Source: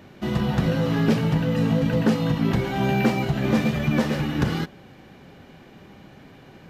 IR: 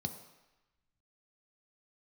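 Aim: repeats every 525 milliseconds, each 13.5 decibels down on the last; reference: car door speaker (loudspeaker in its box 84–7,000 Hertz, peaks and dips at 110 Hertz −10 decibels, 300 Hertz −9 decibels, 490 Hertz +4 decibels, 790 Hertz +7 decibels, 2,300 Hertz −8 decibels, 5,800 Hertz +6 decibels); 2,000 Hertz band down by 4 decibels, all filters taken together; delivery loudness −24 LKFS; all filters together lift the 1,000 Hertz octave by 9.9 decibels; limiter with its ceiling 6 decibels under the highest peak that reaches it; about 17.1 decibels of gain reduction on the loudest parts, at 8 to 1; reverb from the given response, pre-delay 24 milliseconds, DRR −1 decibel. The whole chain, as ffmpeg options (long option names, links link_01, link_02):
-filter_complex "[0:a]equalizer=frequency=1000:width_type=o:gain=7.5,equalizer=frequency=2000:width_type=o:gain=-5.5,acompressor=threshold=-34dB:ratio=8,alimiter=level_in=6.5dB:limit=-24dB:level=0:latency=1,volume=-6.5dB,aecho=1:1:525|1050:0.211|0.0444,asplit=2[link_01][link_02];[1:a]atrim=start_sample=2205,adelay=24[link_03];[link_02][link_03]afir=irnorm=-1:irlink=0,volume=1dB[link_04];[link_01][link_04]amix=inputs=2:normalize=0,highpass=84,equalizer=frequency=110:width_type=q:width=4:gain=-10,equalizer=frequency=300:width_type=q:width=4:gain=-9,equalizer=frequency=490:width_type=q:width=4:gain=4,equalizer=frequency=790:width_type=q:width=4:gain=7,equalizer=frequency=2300:width_type=q:width=4:gain=-8,equalizer=frequency=5800:width_type=q:width=4:gain=6,lowpass=frequency=7000:width=0.5412,lowpass=frequency=7000:width=1.3066,volume=7dB"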